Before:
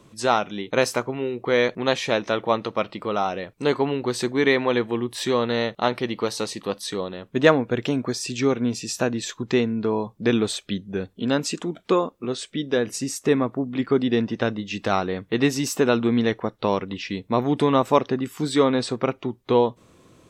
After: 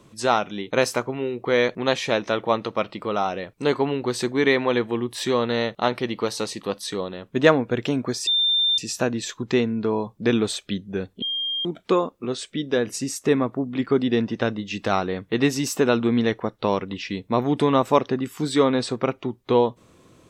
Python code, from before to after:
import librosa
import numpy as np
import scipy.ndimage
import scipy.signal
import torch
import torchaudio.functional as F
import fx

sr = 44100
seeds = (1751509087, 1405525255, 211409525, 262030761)

y = fx.edit(x, sr, fx.bleep(start_s=8.27, length_s=0.51, hz=3590.0, db=-17.0),
    fx.bleep(start_s=11.22, length_s=0.43, hz=3210.0, db=-23.5), tone=tone)